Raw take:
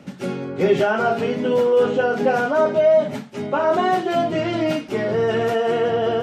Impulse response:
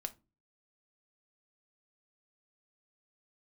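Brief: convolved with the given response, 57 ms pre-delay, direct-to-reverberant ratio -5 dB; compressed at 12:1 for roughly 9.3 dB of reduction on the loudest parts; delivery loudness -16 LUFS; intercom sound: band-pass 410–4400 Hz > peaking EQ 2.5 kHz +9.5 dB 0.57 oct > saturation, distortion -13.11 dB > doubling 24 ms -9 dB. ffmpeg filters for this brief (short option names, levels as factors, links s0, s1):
-filter_complex "[0:a]acompressor=threshold=0.0891:ratio=12,asplit=2[s0][s1];[1:a]atrim=start_sample=2205,adelay=57[s2];[s1][s2]afir=irnorm=-1:irlink=0,volume=2.24[s3];[s0][s3]amix=inputs=2:normalize=0,highpass=410,lowpass=4400,equalizer=f=2500:t=o:w=0.57:g=9.5,asoftclip=threshold=0.133,asplit=2[s4][s5];[s5]adelay=24,volume=0.355[s6];[s4][s6]amix=inputs=2:normalize=0,volume=2"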